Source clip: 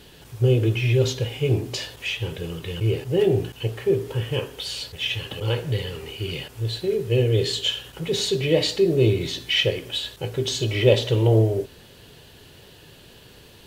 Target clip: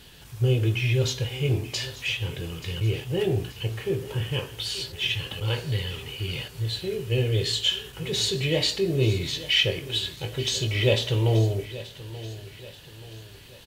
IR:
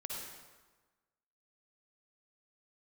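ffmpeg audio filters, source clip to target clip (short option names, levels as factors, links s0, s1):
-filter_complex "[0:a]equalizer=f=410:t=o:w=1.9:g=-7.5,asplit=2[s0][s1];[s1]adelay=21,volume=0.266[s2];[s0][s2]amix=inputs=2:normalize=0,aecho=1:1:881|1762|2643|3524:0.158|0.0713|0.0321|0.0144"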